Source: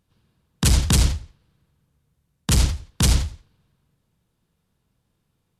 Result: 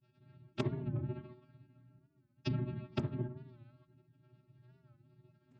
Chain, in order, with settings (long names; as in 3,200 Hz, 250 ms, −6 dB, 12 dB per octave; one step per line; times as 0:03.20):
expanding power law on the bin magnitudes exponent 1.7
channel vocoder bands 8, square 239 Hz
granular cloud, pitch spread up and down by 0 semitones
treble cut that deepens with the level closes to 950 Hz, closed at −28 dBFS
hard clipping −12 dBFS, distortion −23 dB
convolution reverb RT60 0.50 s, pre-delay 3 ms, DRR −2 dB
downward compressor 5 to 1, threshold −43 dBFS, peak gain reduction 23 dB
phase-vocoder pitch shift with formants kept −11.5 semitones
wow of a warped record 45 rpm, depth 100 cents
level +10 dB